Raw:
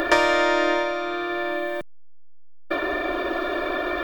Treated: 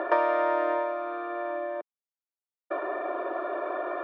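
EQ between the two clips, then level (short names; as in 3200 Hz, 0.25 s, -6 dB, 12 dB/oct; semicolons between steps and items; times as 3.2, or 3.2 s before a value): Butterworth band-pass 600 Hz, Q 0.85; air absorption 110 m; tilt +4 dB/oct; 0.0 dB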